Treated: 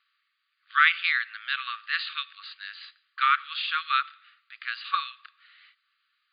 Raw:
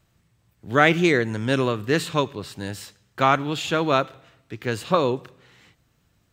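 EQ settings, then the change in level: brick-wall FIR band-pass 1100–4900 Hz; 0.0 dB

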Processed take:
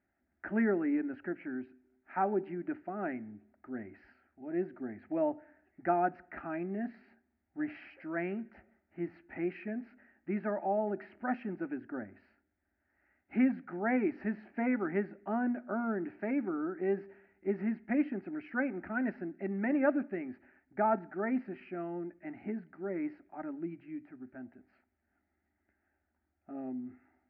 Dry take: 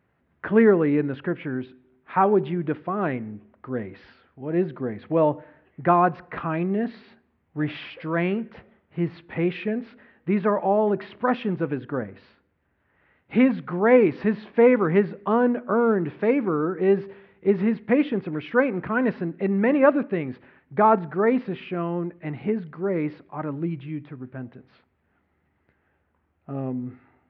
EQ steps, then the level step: air absorption 120 m; fixed phaser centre 710 Hz, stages 8; -8.0 dB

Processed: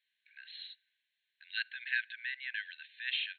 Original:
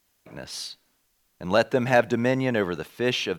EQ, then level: brick-wall FIR band-pass 1500–4300 Hz; -6.0 dB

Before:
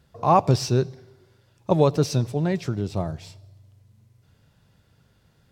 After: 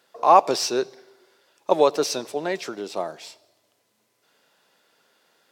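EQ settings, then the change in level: Bessel high-pass 480 Hz, order 4; +5.0 dB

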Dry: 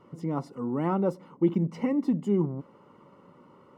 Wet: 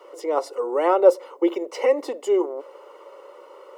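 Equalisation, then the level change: steep high-pass 360 Hz 48 dB/oct; bell 540 Hz +10.5 dB 0.77 oct; high shelf 2000 Hz +11 dB; +5.5 dB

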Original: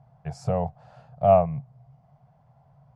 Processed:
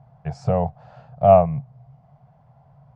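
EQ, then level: air absorption 98 m; +5.0 dB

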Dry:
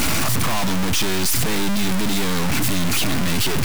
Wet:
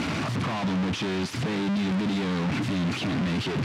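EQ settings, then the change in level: BPF 130–3700 Hz; low shelf 370 Hz +7.5 dB; -7.5 dB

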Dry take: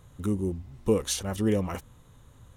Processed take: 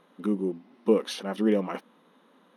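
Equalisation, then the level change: running mean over 6 samples; brick-wall FIR high-pass 180 Hz; +2.5 dB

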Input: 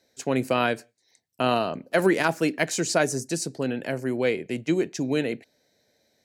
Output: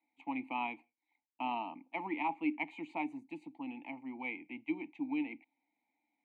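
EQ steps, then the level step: vowel filter u; three-band isolator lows -17 dB, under 260 Hz, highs -17 dB, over 3600 Hz; fixed phaser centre 1500 Hz, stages 6; +5.5 dB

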